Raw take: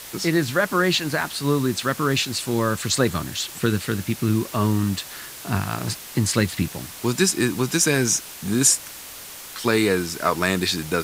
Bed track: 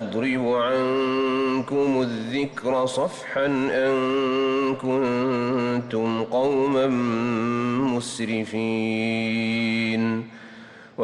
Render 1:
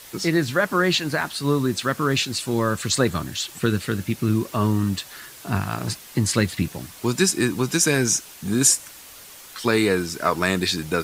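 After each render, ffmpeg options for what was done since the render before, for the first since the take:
-af "afftdn=nr=6:nf=-39"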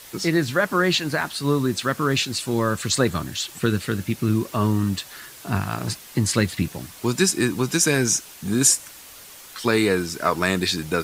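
-af anull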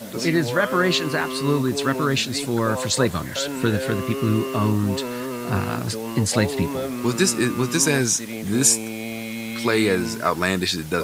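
-filter_complex "[1:a]volume=0.473[s0];[0:a][s0]amix=inputs=2:normalize=0"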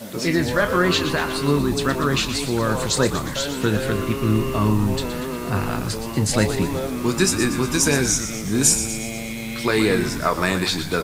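-filter_complex "[0:a]asplit=2[s0][s1];[s1]adelay=28,volume=0.251[s2];[s0][s2]amix=inputs=2:normalize=0,asplit=2[s3][s4];[s4]asplit=7[s5][s6][s7][s8][s9][s10][s11];[s5]adelay=119,afreqshift=-89,volume=0.316[s12];[s6]adelay=238,afreqshift=-178,volume=0.186[s13];[s7]adelay=357,afreqshift=-267,volume=0.11[s14];[s8]adelay=476,afreqshift=-356,volume=0.0653[s15];[s9]adelay=595,afreqshift=-445,volume=0.0385[s16];[s10]adelay=714,afreqshift=-534,volume=0.0226[s17];[s11]adelay=833,afreqshift=-623,volume=0.0133[s18];[s12][s13][s14][s15][s16][s17][s18]amix=inputs=7:normalize=0[s19];[s3][s19]amix=inputs=2:normalize=0"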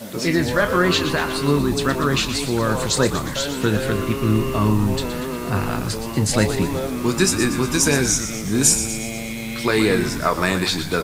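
-af "volume=1.12"

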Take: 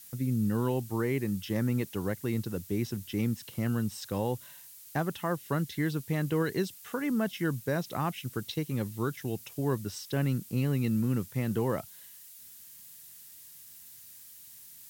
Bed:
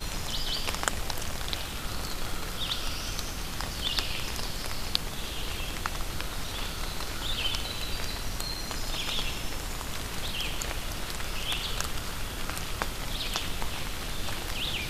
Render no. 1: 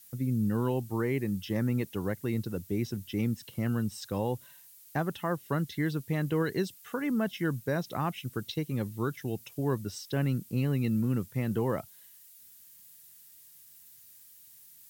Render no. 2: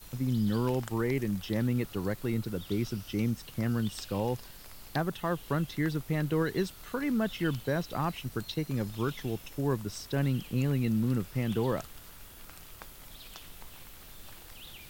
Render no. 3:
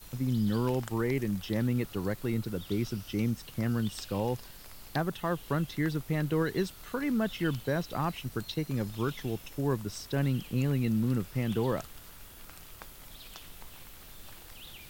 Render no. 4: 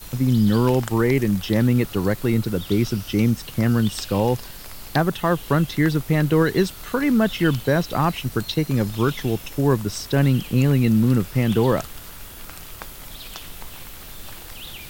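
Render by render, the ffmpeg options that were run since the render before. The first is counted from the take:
-af "afftdn=nr=6:nf=-51"
-filter_complex "[1:a]volume=0.141[s0];[0:a][s0]amix=inputs=2:normalize=0"
-af anull
-af "volume=3.55"

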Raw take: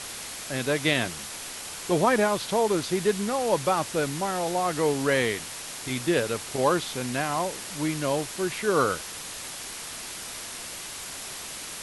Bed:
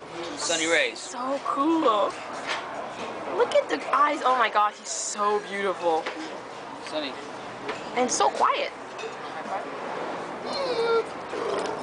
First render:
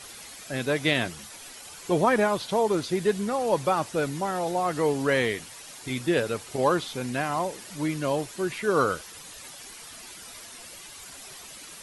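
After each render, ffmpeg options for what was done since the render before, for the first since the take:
-af "afftdn=nr=10:nf=-38"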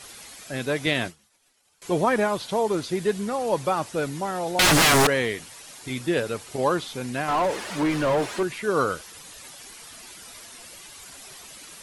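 -filter_complex "[0:a]asettb=1/sr,asplit=3[s0][s1][s2];[s0]atrim=end=0.864[s3];[s1]atrim=start=0.86:end=1.82,asetpts=PTS-STARTPTS,afade=t=in:d=0.004:c=qsin,afade=t=out:st=0.956:d=0.004:c=qsin,agate=range=0.0224:threshold=0.0282:ratio=3:release=100:detection=peak[s4];[s2]atrim=start=1.816[s5];[s3][s4]acrossfade=d=0.004:c1=hsin:c2=qsin[s6];[s6][s5]acrossfade=d=0.004:c1=qsin:c2=hsin,asettb=1/sr,asplit=3[s7][s8][s9];[s7]atrim=end=4.594[s10];[s8]atrim=start=4.59:end=5.07,asetpts=PTS-STARTPTS,afade=t=in:d=0.004:c=qsin,afade=t=out:st=0.476:d=0.004:c=qsin,aeval=exprs='0.2*sin(PI/2*8.91*val(0)/0.2)':c=same[s11];[s9]atrim=start=5.066[s12];[s10][s11]acrossfade=d=0.004:c1=hsin:c2=qsin[s13];[s13][s12]acrossfade=d=0.004:c1=qsin:c2=hsin,asettb=1/sr,asplit=3[s14][s15][s16];[s14]atrim=end=7.284[s17];[s15]atrim=start=7.28:end=8.43,asetpts=PTS-STARTPTS,afade=t=in:d=0.004:c=qsin,afade=t=out:st=1.146:d=0.004:c=qsin,asplit=2[s18][s19];[s19]highpass=f=720:p=1,volume=20,asoftclip=type=tanh:threshold=0.2[s20];[s18][s20]amix=inputs=2:normalize=0,lowpass=f=1300:p=1,volume=0.501[s21];[s16]atrim=start=8.426[s22];[s17][s21]acrossfade=d=0.004:c1=hsin:c2=qsin[s23];[s23][s22]acrossfade=d=0.004:c1=qsin:c2=hsin"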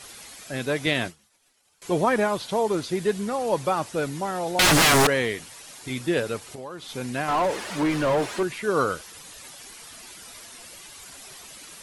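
-filter_complex "[0:a]asplit=3[s0][s1][s2];[s0]afade=t=out:st=6.39:d=0.02[s3];[s1]acompressor=threshold=0.0158:ratio=4:attack=3.2:release=140:knee=1:detection=peak,afade=t=in:st=6.39:d=0.02,afade=t=out:st=6.88:d=0.02[s4];[s2]afade=t=in:st=6.88:d=0.02[s5];[s3][s4][s5]amix=inputs=3:normalize=0"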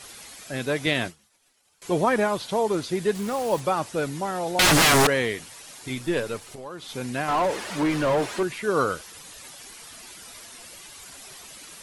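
-filter_complex "[0:a]asplit=3[s0][s1][s2];[s0]afade=t=out:st=3.14:d=0.02[s3];[s1]acrusher=bits=5:mix=0:aa=0.5,afade=t=in:st=3.14:d=0.02,afade=t=out:st=3.59:d=0.02[s4];[s2]afade=t=in:st=3.59:d=0.02[s5];[s3][s4][s5]amix=inputs=3:normalize=0,asettb=1/sr,asplit=3[s6][s7][s8];[s6]atrim=end=5.954[s9];[s7]atrim=start=5.95:end=6.66,asetpts=PTS-STARTPTS,afade=t=in:d=0.004:c=qsin,afade=t=out:st=0.706:d=0.004:c=qsin,aeval=exprs='if(lt(val(0),0),0.708*val(0),val(0))':c=same[s10];[s8]atrim=start=6.656[s11];[s9][s10]acrossfade=d=0.004:c1=hsin:c2=qsin[s12];[s12][s11]acrossfade=d=0.004:c1=qsin:c2=hsin"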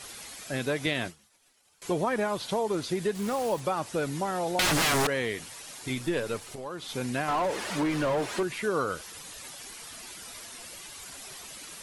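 -af "acompressor=threshold=0.0501:ratio=3"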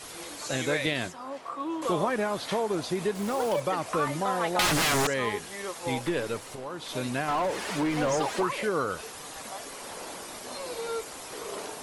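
-filter_complex "[1:a]volume=0.316[s0];[0:a][s0]amix=inputs=2:normalize=0"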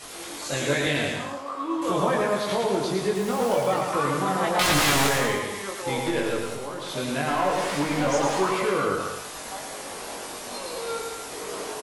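-filter_complex "[0:a]asplit=2[s0][s1];[s1]adelay=21,volume=0.75[s2];[s0][s2]amix=inputs=2:normalize=0,aecho=1:1:110|192.5|254.4|300.8|335.6:0.631|0.398|0.251|0.158|0.1"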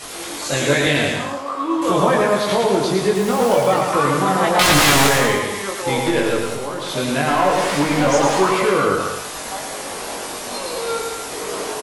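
-af "volume=2.37"

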